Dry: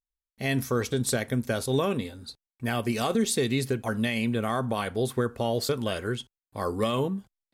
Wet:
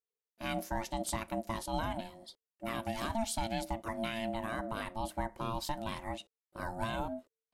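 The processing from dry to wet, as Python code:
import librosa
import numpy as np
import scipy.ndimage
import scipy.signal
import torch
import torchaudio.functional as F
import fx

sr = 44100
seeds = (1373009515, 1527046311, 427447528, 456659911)

y = x * np.sin(2.0 * np.pi * 450.0 * np.arange(len(x)) / sr)
y = y * 10.0 ** (-6.5 / 20.0)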